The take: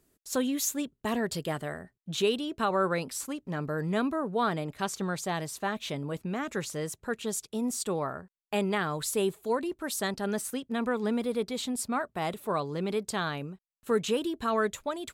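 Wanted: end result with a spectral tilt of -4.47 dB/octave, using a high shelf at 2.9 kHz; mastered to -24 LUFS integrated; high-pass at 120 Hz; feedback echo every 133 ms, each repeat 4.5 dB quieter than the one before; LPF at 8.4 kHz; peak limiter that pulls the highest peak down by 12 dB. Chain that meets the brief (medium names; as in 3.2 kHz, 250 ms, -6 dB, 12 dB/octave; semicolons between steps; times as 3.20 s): high-pass 120 Hz; low-pass 8.4 kHz; treble shelf 2.9 kHz -3.5 dB; peak limiter -27.5 dBFS; feedback delay 133 ms, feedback 60%, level -4.5 dB; trim +11 dB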